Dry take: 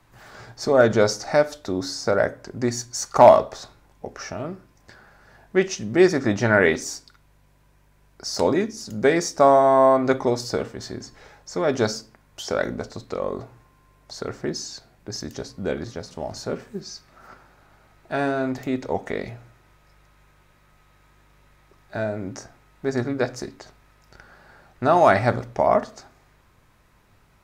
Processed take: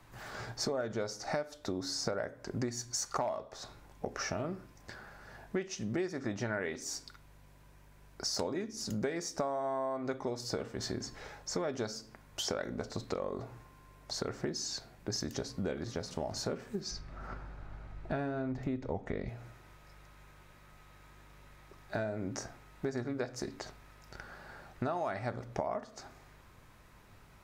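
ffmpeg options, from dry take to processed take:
ffmpeg -i in.wav -filter_complex "[0:a]asettb=1/sr,asplit=3[link_01][link_02][link_03];[link_01]atrim=end=16.914[link_04];[link_02]atrim=start=16.91:end=19.29,asetpts=PTS-STARTPTS,afade=type=in:duration=0.004:curve=qsin,afade=type=out:start_time=2.376:duration=0.004:curve=qsin,aemphasis=mode=reproduction:type=bsi[link_05];[link_03]atrim=start=19.286[link_06];[link_04][link_05]acrossfade=duration=0.004:curve1=hsin:curve2=qsin[link_07];[link_07][link_06]acrossfade=duration=0.004:curve1=qsin:curve2=hsin,acompressor=threshold=-32dB:ratio=12" out.wav

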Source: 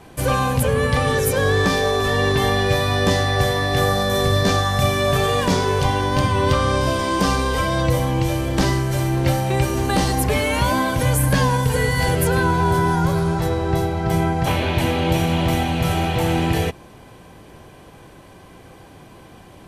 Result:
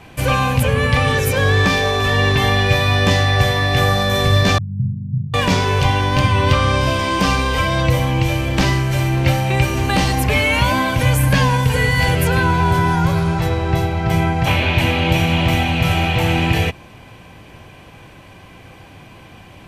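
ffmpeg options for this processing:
ffmpeg -i in.wav -filter_complex "[0:a]asettb=1/sr,asplit=3[link_01][link_02][link_03];[link_01]atrim=end=4.584[link_04];[link_02]atrim=start=4.58:end=5.34,asetpts=PTS-STARTPTS,afade=type=in:duration=0.004:curve=qsin,afade=type=out:start_time=0.756:duration=0.004:curve=qsin,asuperpass=centerf=150:order=8:qfactor=1.4[link_05];[link_03]atrim=start=5.336[link_06];[link_04][link_05]acrossfade=duration=0.004:curve1=hsin:curve2=qsin[link_07];[link_07][link_06]acrossfade=duration=0.004:curve1=qsin:curve2=hsin,equalizer=frequency=100:width_type=o:width=0.67:gain=4,equalizer=frequency=400:width_type=o:width=0.67:gain=-4,equalizer=frequency=2500:width_type=o:width=0.67:gain=8,equalizer=frequency=10000:width_type=o:width=0.67:gain=-5,volume=2dB" out.wav

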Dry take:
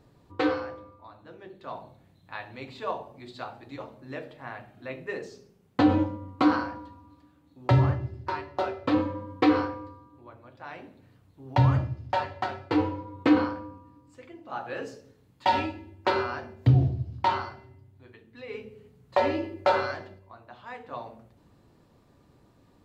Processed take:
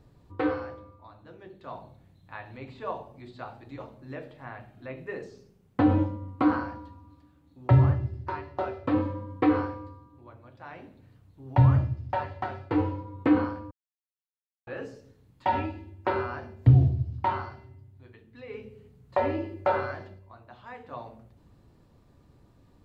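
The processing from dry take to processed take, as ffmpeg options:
ffmpeg -i in.wav -filter_complex "[0:a]asplit=3[link_01][link_02][link_03];[link_01]atrim=end=13.71,asetpts=PTS-STARTPTS,afade=type=out:start_time=13.706:duration=0.004:curve=hsin[link_04];[link_02]atrim=start=13.71:end=14.67,asetpts=PTS-STARTPTS,volume=0[link_05];[link_03]atrim=start=14.67,asetpts=PTS-STARTPTS,afade=type=in:duration=0.004:curve=hsin[link_06];[link_04][link_05][link_06]concat=n=3:v=0:a=1,acrossover=split=2600[link_07][link_08];[link_08]acompressor=threshold=-57dB:ratio=4:attack=1:release=60[link_09];[link_07][link_09]amix=inputs=2:normalize=0,lowshelf=frequency=110:gain=11,volume=-2.5dB" out.wav

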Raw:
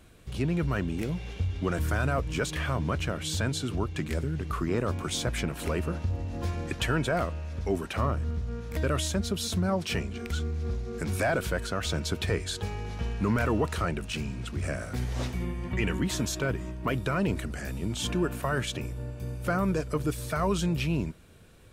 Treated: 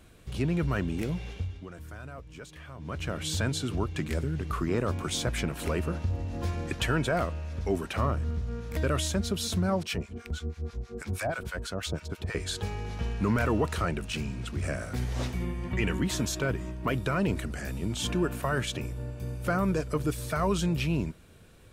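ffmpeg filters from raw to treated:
ffmpeg -i in.wav -filter_complex "[0:a]asettb=1/sr,asplit=3[link_01][link_02][link_03];[link_01]atrim=end=9.834[link_04];[link_02]atrim=start=9.83:end=12.35,asetpts=PTS-STARTPTS,afade=type=in:duration=0.004:curve=qsin,afade=type=out:start_time=2.516:duration=0.004:curve=qsin,acrossover=split=890[link_05][link_06];[link_05]aeval=exprs='val(0)*(1-1/2+1/2*cos(2*PI*6.2*n/s))':channel_layout=same[link_07];[link_06]aeval=exprs='val(0)*(1-1/2-1/2*cos(2*PI*6.2*n/s))':channel_layout=same[link_08];[link_07][link_08]amix=inputs=2:normalize=0[link_09];[link_03]atrim=start=12.346[link_10];[link_04][link_09]acrossfade=duration=0.004:curve1=hsin:curve2=qsin[link_11];[link_11][link_10]acrossfade=duration=0.004:curve1=qsin:curve2=hsin,asplit=3[link_12][link_13][link_14];[link_12]atrim=end=1.67,asetpts=PTS-STARTPTS,afade=type=out:start_time=1.23:duration=0.44:silence=0.16788[link_15];[link_13]atrim=start=1.67:end=2.77,asetpts=PTS-STARTPTS,volume=-15.5dB[link_16];[link_14]atrim=start=2.77,asetpts=PTS-STARTPTS,afade=type=in:duration=0.44:silence=0.16788[link_17];[link_15][link_16][link_17]concat=n=3:v=0:a=1" out.wav

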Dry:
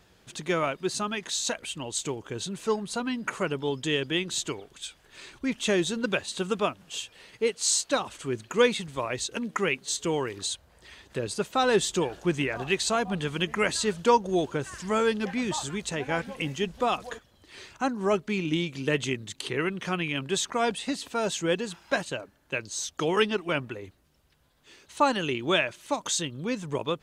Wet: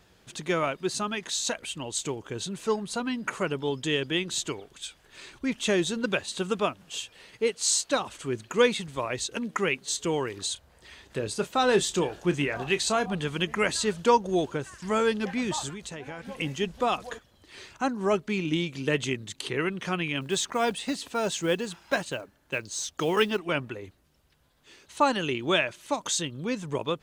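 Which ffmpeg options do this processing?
ffmpeg -i in.wav -filter_complex "[0:a]asettb=1/sr,asplit=3[link_01][link_02][link_03];[link_01]atrim=end=10.534[link_04];[link_02]atrim=start=10.53:end=13.15,asetpts=PTS-STARTPTS,afade=type=in:duration=0.004:curve=qsin,afade=type=out:start_time=2.616:duration=0.004:curve=qsin,asplit=2[link_05][link_06];[link_06]adelay=28,volume=-12dB[link_07];[link_05][link_07]amix=inputs=2:normalize=0,atrim=end_sample=115542[link_08];[link_03]atrim=start=13.146[link_09];[link_04][link_08]acrossfade=duration=0.004:curve1=hsin:curve2=qsin[link_10];[link_10][link_09]acrossfade=duration=0.004:curve1=qsin:curve2=hsin,asettb=1/sr,asplit=3[link_11][link_12][link_13];[link_11]atrim=end=15.694[link_14];[link_12]atrim=start=15.69:end=16.27,asetpts=PTS-STARTPTS,afade=type=in:duration=0.004:curve=qsin,afade=type=out:start_time=0.576:duration=0.004:curve=qsin,acompressor=threshold=-35dB:ratio=6:attack=3.2:release=140:knee=1:detection=peak[link_15];[link_13]atrim=start=16.266[link_16];[link_14][link_15]acrossfade=duration=0.004:curve1=hsin:curve2=qsin[link_17];[link_17][link_16]acrossfade=duration=0.004:curve1=qsin:curve2=hsin,asettb=1/sr,asplit=3[link_18][link_19][link_20];[link_18]atrim=end=20.214[link_21];[link_19]atrim=start=20.21:end=23.39,asetpts=PTS-STARTPTS,afade=type=in:duration=0.004:curve=qsin,afade=type=out:start_time=3.176:duration=0.004:curve=qsin,acrusher=bits=7:mode=log:mix=0:aa=0.000001[link_22];[link_20]atrim=start=23.386[link_23];[link_21][link_22]acrossfade=duration=0.004:curve1=hsin:curve2=qsin[link_24];[link_24][link_23]acrossfade=duration=0.004:curve1=qsin:curve2=hsin,asplit=2[link_25][link_26];[link_25]atrim=end=14.82,asetpts=PTS-STARTPTS,afade=type=out:start_time=14.39:duration=0.43:curve=qsin:silence=0.316228[link_27];[link_26]atrim=start=14.82,asetpts=PTS-STARTPTS,afade=type=in:duration=0.004:curve=hsin:silence=0.316228[link_28];[link_27][link_28]concat=n=2:v=0:a=1" out.wav

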